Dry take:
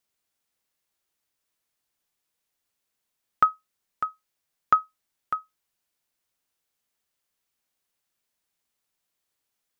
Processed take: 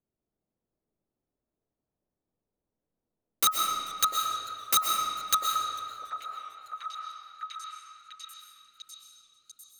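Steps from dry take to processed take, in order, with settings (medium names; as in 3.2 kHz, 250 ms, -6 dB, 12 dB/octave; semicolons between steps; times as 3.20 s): level-controlled noise filter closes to 400 Hz, open at -30 dBFS; integer overflow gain 23.5 dB; repeats whose band climbs or falls 695 ms, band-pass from 540 Hz, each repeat 0.7 oct, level -4.5 dB; reverberation RT60 2.3 s, pre-delay 87 ms, DRR 0.5 dB; modulated delay 444 ms, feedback 56%, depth 127 cents, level -23.5 dB; trim +7 dB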